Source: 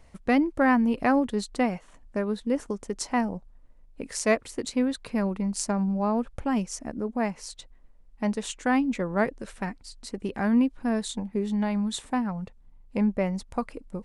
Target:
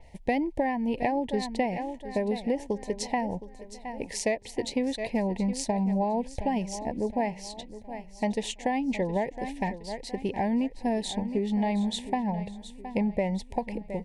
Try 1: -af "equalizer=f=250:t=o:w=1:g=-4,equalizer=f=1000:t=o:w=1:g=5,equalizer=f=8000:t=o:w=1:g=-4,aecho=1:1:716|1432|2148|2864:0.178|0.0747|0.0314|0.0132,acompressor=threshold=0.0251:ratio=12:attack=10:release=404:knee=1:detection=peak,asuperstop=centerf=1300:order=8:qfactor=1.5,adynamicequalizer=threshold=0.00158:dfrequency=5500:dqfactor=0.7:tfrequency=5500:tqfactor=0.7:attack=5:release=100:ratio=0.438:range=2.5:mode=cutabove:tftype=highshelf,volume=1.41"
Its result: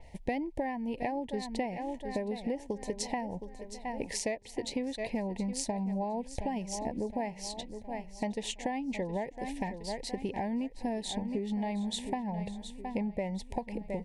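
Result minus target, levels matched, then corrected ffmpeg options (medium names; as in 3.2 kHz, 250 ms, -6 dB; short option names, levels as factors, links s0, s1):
compression: peak gain reduction +7 dB
-af "equalizer=f=250:t=o:w=1:g=-4,equalizer=f=1000:t=o:w=1:g=5,equalizer=f=8000:t=o:w=1:g=-4,aecho=1:1:716|1432|2148|2864:0.178|0.0747|0.0314|0.0132,acompressor=threshold=0.0596:ratio=12:attack=10:release=404:knee=1:detection=peak,asuperstop=centerf=1300:order=8:qfactor=1.5,adynamicequalizer=threshold=0.00158:dfrequency=5500:dqfactor=0.7:tfrequency=5500:tqfactor=0.7:attack=5:release=100:ratio=0.438:range=2.5:mode=cutabove:tftype=highshelf,volume=1.41"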